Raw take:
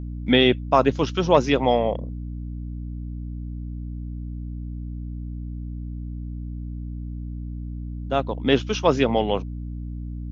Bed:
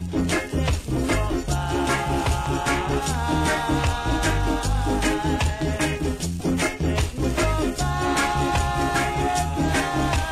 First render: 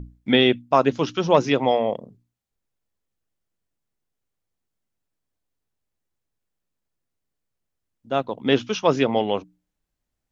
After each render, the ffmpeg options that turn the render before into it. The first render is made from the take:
-af "bandreject=f=60:t=h:w=6,bandreject=f=120:t=h:w=6,bandreject=f=180:t=h:w=6,bandreject=f=240:t=h:w=6,bandreject=f=300:t=h:w=6"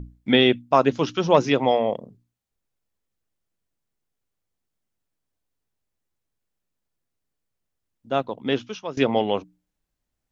-filter_complex "[0:a]asplit=2[a][b];[a]atrim=end=8.97,asetpts=PTS-STARTPTS,afade=t=out:st=8.14:d=0.83:silence=0.11885[c];[b]atrim=start=8.97,asetpts=PTS-STARTPTS,afade=t=in:d=0.004:c=hsin:silence=0.11885[d];[c][d]concat=n=2:v=0:a=1"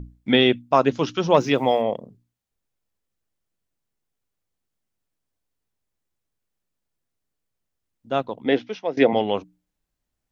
-filter_complex "[0:a]asplit=3[a][b][c];[a]afade=t=out:st=1.33:d=0.02[d];[b]acrusher=bits=8:mix=0:aa=0.5,afade=t=in:st=1.33:d=0.02,afade=t=out:st=1.81:d=0.02[e];[c]afade=t=in:st=1.81:d=0.02[f];[d][e][f]amix=inputs=3:normalize=0,asettb=1/sr,asplit=3[g][h][i];[g]atrim=end=8.454[j];[h]atrim=start=8.45:end=9.13,asetpts=PTS-STARTPTS,afade=t=in:d=0.004:c=qsin,afade=t=out:st=0.676:d=0.004:c=qsin,highpass=160,equalizer=f=300:t=q:w=4:g=5,equalizer=f=490:t=q:w=4:g=7,equalizer=f=730:t=q:w=4:g=9,equalizer=f=1.2k:t=q:w=4:g=-7,equalizer=f=2k:t=q:w=4:g=9,equalizer=f=2.9k:t=q:w=4:g=-4,lowpass=f=5.1k:w=0.5412,lowpass=f=5.1k:w=1.3066[k];[i]atrim=start=9.126[l];[j][k]acrossfade=d=0.004:c1=hsin:c2=qsin[m];[m][l]acrossfade=d=0.004:c1=qsin:c2=hsin"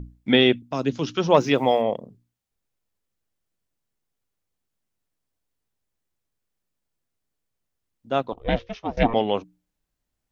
-filter_complex "[0:a]asettb=1/sr,asplit=3[a][b][c];[a]atrim=end=0.624[d];[b]atrim=start=0.62:end=1.16,asetpts=PTS-STARTPTS,afade=t=in:d=0.004:c=qsin,afade=t=out:st=0.536:d=0.004:c=qsin,acrossover=split=350|3000[e][f][g];[f]acompressor=threshold=-35dB:ratio=2.5:attack=3.2:release=140:knee=2.83:detection=peak[h];[e][h][g]amix=inputs=3:normalize=0[i];[c]atrim=start=1.156[j];[d][i]acrossfade=d=0.004:c1=hsin:c2=qsin[k];[k][j]acrossfade=d=0.004:c1=qsin:c2=hsin,asettb=1/sr,asplit=3[l][m][n];[l]atrim=end=8.324[o];[m]atrim=start=8.32:end=9.14,asetpts=PTS-STARTPTS,afade=t=in:d=0.004:c=qsin,afade=t=out:st=0.816:d=0.004:c=qsin,aeval=exprs='val(0)*sin(2*PI*230*n/s)':c=same[p];[n]atrim=start=9.136[q];[o][p]acrossfade=d=0.004:c1=hsin:c2=qsin[r];[r][q]acrossfade=d=0.004:c1=qsin:c2=hsin"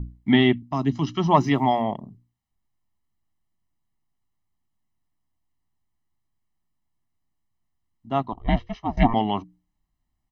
-af "highshelf=f=2.1k:g=-9.5,aecho=1:1:1:0.98"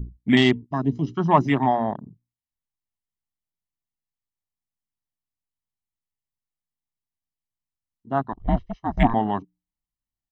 -af "afwtdn=0.0355,highshelf=f=2.8k:g=7"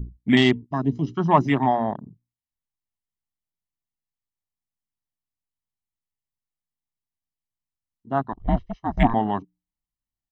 -af anull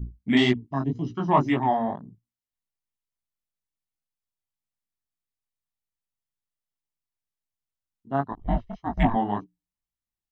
-af "flanger=delay=16.5:depth=5.6:speed=1.9"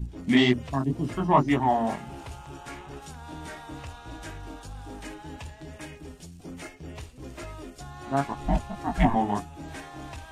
-filter_complex "[1:a]volume=-18dB[a];[0:a][a]amix=inputs=2:normalize=0"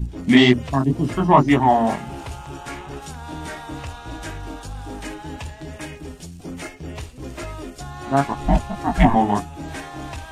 -af "volume=7.5dB,alimiter=limit=-2dB:level=0:latency=1"

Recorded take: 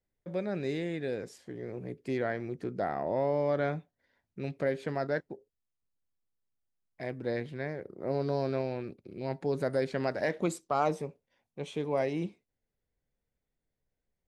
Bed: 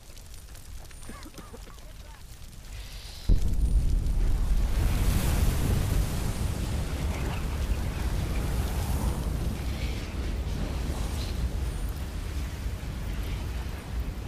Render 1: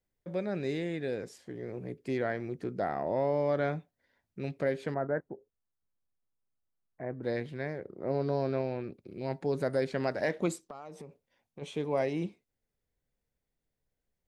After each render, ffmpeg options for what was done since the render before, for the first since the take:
-filter_complex "[0:a]asettb=1/sr,asplit=3[a][b][c];[a]atrim=end=4.944[d];[b]atrim=start=4.94:end=7.23,asetpts=PTS-STARTPTS,afade=t=in:d=0.004:c=qsin,afade=t=out:st=2.286:d=0.004:c=qsin,lowpass=f=1.6k:w=0.5412,lowpass=f=1.6k:w=1.3066[e];[c]atrim=start=7.226[f];[d][e]acrossfade=d=0.004:c1=hsin:c2=qsin[g];[g][f]acrossfade=d=0.004:c1=qsin:c2=hsin,asettb=1/sr,asplit=3[h][i][j];[h]atrim=end=7.784[k];[i]atrim=start=7.78:end=8.94,asetpts=PTS-STARTPTS,afade=t=in:d=0.004:c=qsin,afade=t=out:st=1.156:d=0.004:c=qsin,aemphasis=mode=reproduction:type=cd[l];[j]atrim=start=8.936[m];[k][l]acrossfade=d=0.004:c1=hsin:c2=qsin[n];[n][m]acrossfade=d=0.004:c1=qsin:c2=hsin,asplit=3[o][p][q];[o]afade=t=out:st=10.55:d=0.02[r];[p]acompressor=threshold=-41dB:ratio=10:attack=3.2:release=140:knee=1:detection=peak,afade=t=in:st=10.55:d=0.02,afade=t=out:st=11.61:d=0.02[s];[q]afade=t=in:st=11.61:d=0.02[t];[r][s][t]amix=inputs=3:normalize=0"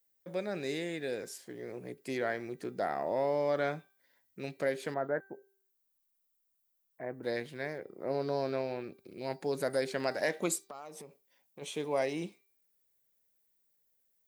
-af "aemphasis=mode=production:type=bsi,bandreject=f=390.5:t=h:w=4,bandreject=f=781:t=h:w=4,bandreject=f=1.1715k:t=h:w=4,bandreject=f=1.562k:t=h:w=4,bandreject=f=1.9525k:t=h:w=4,bandreject=f=2.343k:t=h:w=4,bandreject=f=2.7335k:t=h:w=4,bandreject=f=3.124k:t=h:w=4,bandreject=f=3.5145k:t=h:w=4,bandreject=f=3.905k:t=h:w=4,bandreject=f=4.2955k:t=h:w=4,bandreject=f=4.686k:t=h:w=4,bandreject=f=5.0765k:t=h:w=4"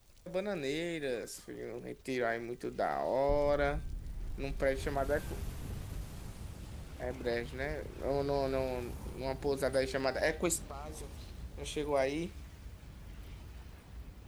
-filter_complex "[1:a]volume=-16dB[a];[0:a][a]amix=inputs=2:normalize=0"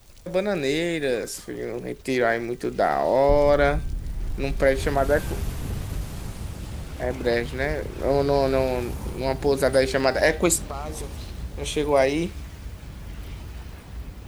-af "volume=12dB"

